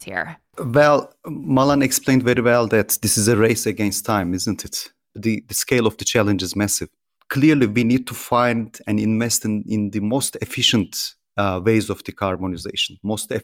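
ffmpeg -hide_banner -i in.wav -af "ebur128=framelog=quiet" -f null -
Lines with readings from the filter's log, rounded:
Integrated loudness:
  I:         -19.3 LUFS
  Threshold: -29.6 LUFS
Loudness range:
  LRA:         3.7 LU
  Threshold: -39.4 LUFS
  LRA low:   -21.1 LUFS
  LRA high:  -17.4 LUFS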